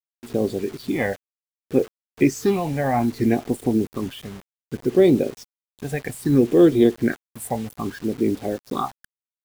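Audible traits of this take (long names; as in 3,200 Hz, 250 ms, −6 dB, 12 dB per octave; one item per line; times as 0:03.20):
phaser sweep stages 6, 0.63 Hz, lowest notch 330–1,700 Hz
a quantiser's noise floor 8 bits, dither none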